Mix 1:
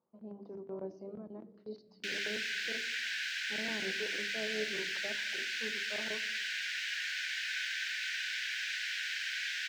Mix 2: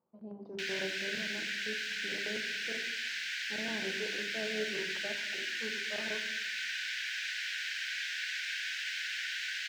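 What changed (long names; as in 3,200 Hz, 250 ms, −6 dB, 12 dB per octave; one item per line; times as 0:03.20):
speech: send +7.5 dB
background: entry −1.45 s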